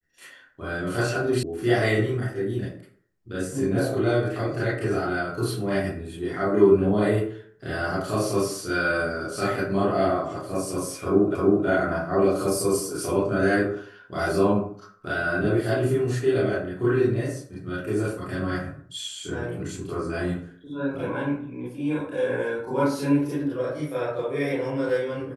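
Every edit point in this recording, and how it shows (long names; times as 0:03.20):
0:01.43: cut off before it has died away
0:11.35: the same again, the last 0.32 s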